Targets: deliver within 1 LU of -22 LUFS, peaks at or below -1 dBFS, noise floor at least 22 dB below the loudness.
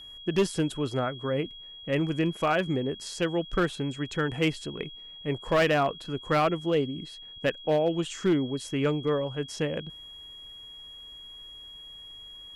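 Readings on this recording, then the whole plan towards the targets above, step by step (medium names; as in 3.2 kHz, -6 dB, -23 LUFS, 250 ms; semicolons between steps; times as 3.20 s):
clipped samples 0.6%; clipping level -17.5 dBFS; steady tone 3.3 kHz; tone level -43 dBFS; loudness -28.5 LUFS; peak level -17.5 dBFS; loudness target -22.0 LUFS
-> clip repair -17.5 dBFS; band-stop 3.3 kHz, Q 30; trim +6.5 dB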